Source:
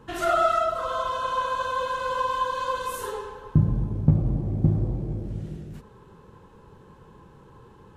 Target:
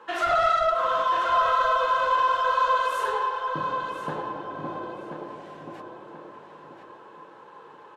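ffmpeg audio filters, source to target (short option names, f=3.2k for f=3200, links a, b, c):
-filter_complex "[0:a]highpass=490,highshelf=f=7.3k:g=-6.5,asplit=2[a][b];[b]volume=26dB,asoftclip=hard,volume=-26dB,volume=-7.5dB[c];[a][c]amix=inputs=2:normalize=0,asplit=2[d][e];[e]highpass=f=720:p=1,volume=16dB,asoftclip=type=tanh:threshold=-9.5dB[f];[d][f]amix=inputs=2:normalize=0,lowpass=f=2.2k:p=1,volume=-6dB,flanger=delay=5.6:depth=1.7:regen=-46:speed=1.2:shape=triangular,asplit=2[g][h];[h]adelay=1032,lowpass=f=4.6k:p=1,volume=-6dB,asplit=2[i][j];[j]adelay=1032,lowpass=f=4.6k:p=1,volume=0.37,asplit=2[k][l];[l]adelay=1032,lowpass=f=4.6k:p=1,volume=0.37,asplit=2[m][n];[n]adelay=1032,lowpass=f=4.6k:p=1,volume=0.37[o];[i][k][m][o]amix=inputs=4:normalize=0[p];[g][p]amix=inputs=2:normalize=0"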